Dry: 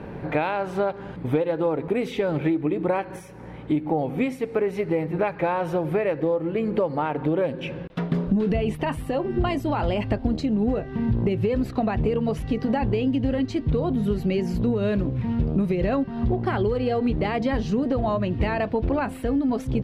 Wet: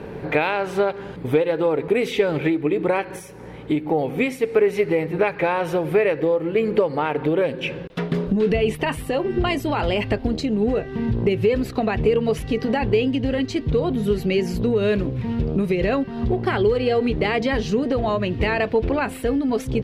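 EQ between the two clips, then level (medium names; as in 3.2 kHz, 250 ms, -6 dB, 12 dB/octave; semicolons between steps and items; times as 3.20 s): peaking EQ 430 Hz +7 dB 0.42 oct; dynamic bell 2.2 kHz, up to +5 dB, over -40 dBFS, Q 1; treble shelf 2.8 kHz +9 dB; 0.0 dB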